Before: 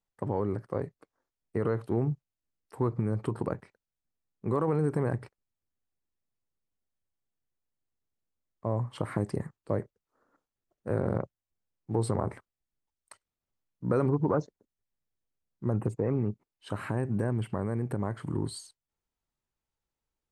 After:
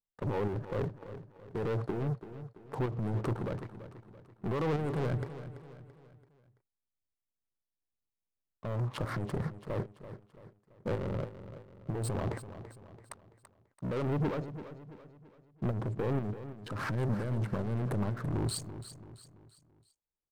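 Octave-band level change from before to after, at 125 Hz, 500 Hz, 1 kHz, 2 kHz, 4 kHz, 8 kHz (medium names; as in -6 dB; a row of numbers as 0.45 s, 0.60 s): -2.0 dB, -4.5 dB, -3.0 dB, +1.0 dB, +3.5 dB, +2.5 dB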